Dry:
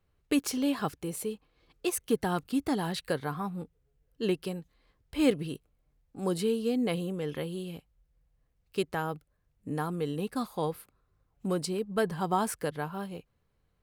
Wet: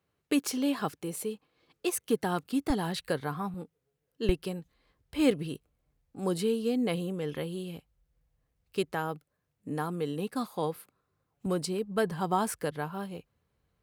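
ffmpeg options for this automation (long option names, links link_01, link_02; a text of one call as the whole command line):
ffmpeg -i in.wav -af "asetnsamples=nb_out_samples=441:pad=0,asendcmd='2.7 highpass f 45;3.54 highpass f 170;4.29 highpass f 48;8.92 highpass f 130;11.46 highpass f 50',highpass=140" out.wav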